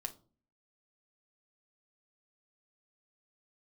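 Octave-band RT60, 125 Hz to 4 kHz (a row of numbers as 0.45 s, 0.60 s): 0.60 s, 0.65 s, 0.45 s, 0.35 s, 0.25 s, 0.25 s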